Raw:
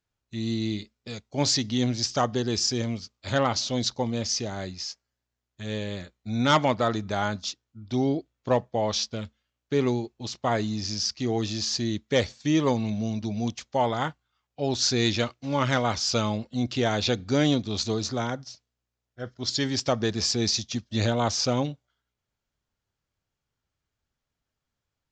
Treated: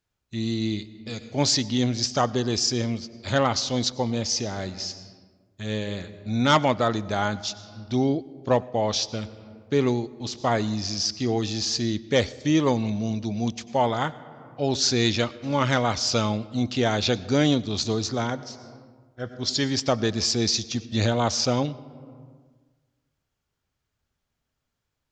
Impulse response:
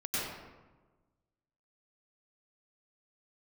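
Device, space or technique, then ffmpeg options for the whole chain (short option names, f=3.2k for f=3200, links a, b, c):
compressed reverb return: -filter_complex "[0:a]asplit=2[a][b];[1:a]atrim=start_sample=2205[c];[b][c]afir=irnorm=-1:irlink=0,acompressor=threshold=-28dB:ratio=10,volume=-12dB[d];[a][d]amix=inputs=2:normalize=0,volume=1.5dB"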